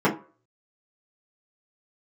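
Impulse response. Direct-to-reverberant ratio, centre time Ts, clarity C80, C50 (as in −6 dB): −7.5 dB, 17 ms, 17.5 dB, 12.0 dB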